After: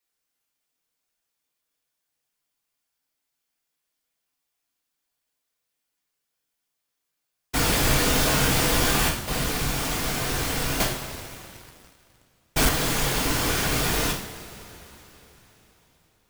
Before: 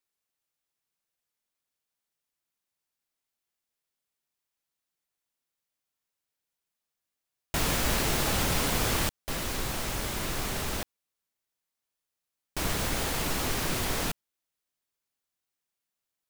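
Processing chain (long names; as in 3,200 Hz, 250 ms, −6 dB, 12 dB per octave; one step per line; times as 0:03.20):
random phases in short frames
coupled-rooms reverb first 0.53 s, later 4.1 s, from −18 dB, DRR −1 dB
0:10.80–0:12.69: leveller curve on the samples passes 2
level +2.5 dB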